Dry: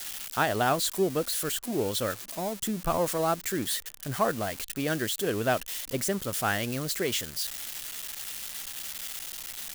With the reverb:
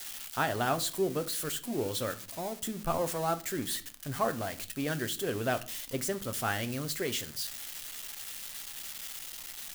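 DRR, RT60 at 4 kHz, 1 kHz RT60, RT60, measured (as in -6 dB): 8.5 dB, 0.35 s, 0.40 s, 0.45 s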